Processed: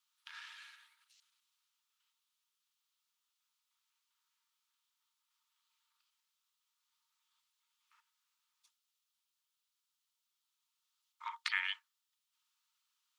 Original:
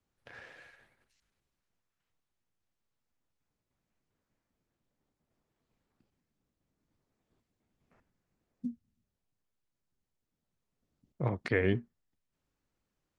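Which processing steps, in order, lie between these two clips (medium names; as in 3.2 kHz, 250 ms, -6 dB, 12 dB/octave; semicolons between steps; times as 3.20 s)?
rippled Chebyshev high-pass 890 Hz, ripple 9 dB; treble shelf 3.1 kHz +11.5 dB; trim +4.5 dB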